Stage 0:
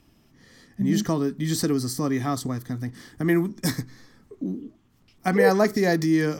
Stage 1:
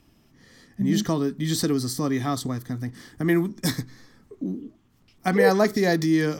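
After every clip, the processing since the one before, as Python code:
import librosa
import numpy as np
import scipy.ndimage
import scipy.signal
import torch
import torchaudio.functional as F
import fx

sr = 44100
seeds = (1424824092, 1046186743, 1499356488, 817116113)

y = fx.dynamic_eq(x, sr, hz=3600.0, q=3.2, threshold_db=-52.0, ratio=4.0, max_db=6)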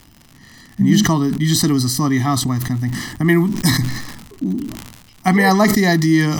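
y = x + 0.79 * np.pad(x, (int(1.0 * sr / 1000.0), 0))[:len(x)]
y = fx.dmg_crackle(y, sr, seeds[0], per_s=130.0, level_db=-37.0)
y = fx.sustainer(y, sr, db_per_s=52.0)
y = F.gain(torch.from_numpy(y), 6.0).numpy()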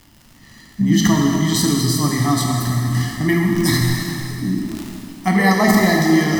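y = fx.rev_plate(x, sr, seeds[1], rt60_s=2.8, hf_ratio=0.9, predelay_ms=0, drr_db=-1.0)
y = F.gain(torch.from_numpy(y), -3.5).numpy()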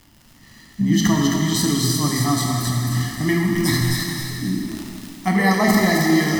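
y = fx.echo_wet_highpass(x, sr, ms=265, feedback_pct=34, hz=2000.0, wet_db=-3.0)
y = F.gain(torch.from_numpy(y), -2.5).numpy()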